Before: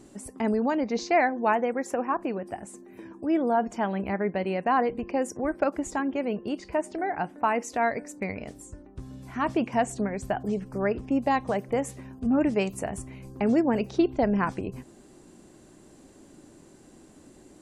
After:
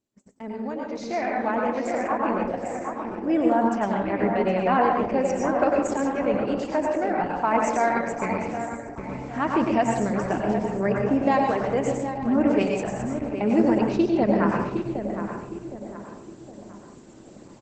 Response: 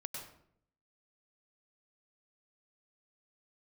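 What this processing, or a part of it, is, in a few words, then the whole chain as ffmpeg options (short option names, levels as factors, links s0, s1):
speakerphone in a meeting room: -filter_complex "[0:a]highpass=83,asettb=1/sr,asplit=3[s0][s1][s2];[s0]atrim=end=0.644[s3];[s1]atrim=start=0.64:end=1.87,asetpts=PTS-STARTPTS,afade=t=in:d=0.004:c=qsin,afade=t=out:st=1.226:d=0.004:c=qsin,lowshelf=f=110:g=5[s4];[s2]atrim=start=1.866[s5];[s3][s4]acrossfade=d=0.004:c1=hsin:c2=qsin[s6];[s6][s5]acrossfade=d=0.004:c1=qsin:c2=hsin,asplit=2[s7][s8];[s8]adelay=764,lowpass=f=2500:p=1,volume=0.398,asplit=2[s9][s10];[s10]adelay=764,lowpass=f=2500:p=1,volume=0.4,asplit=2[s11][s12];[s12]adelay=764,lowpass=f=2500:p=1,volume=0.4,asplit=2[s13][s14];[s14]adelay=764,lowpass=f=2500:p=1,volume=0.4,asplit=2[s15][s16];[s16]adelay=764,lowpass=f=2500:p=1,volume=0.4[s17];[s7][s9][s11][s13][s15][s17]amix=inputs=6:normalize=0[s18];[1:a]atrim=start_sample=2205[s19];[s18][s19]afir=irnorm=-1:irlink=0,asplit=2[s20][s21];[s21]adelay=260,highpass=300,lowpass=3400,asoftclip=type=hard:threshold=0.0944,volume=0.112[s22];[s20][s22]amix=inputs=2:normalize=0,dynaudnorm=f=200:g=17:m=3.98,agate=range=0.0631:threshold=0.00891:ratio=16:detection=peak,volume=0.562" -ar 48000 -c:a libopus -b:a 12k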